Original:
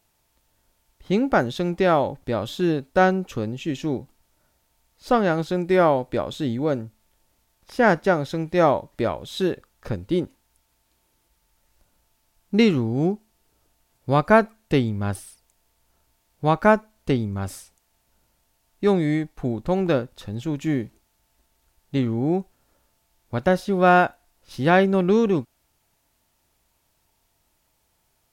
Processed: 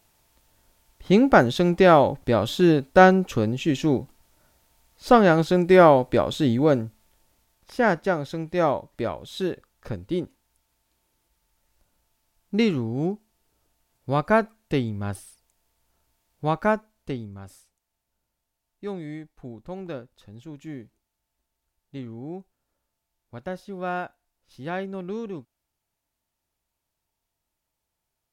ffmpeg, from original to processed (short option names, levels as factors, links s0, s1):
-af "volume=1.58,afade=t=out:st=6.71:d=1.23:silence=0.398107,afade=t=out:st=16.46:d=0.99:silence=0.334965"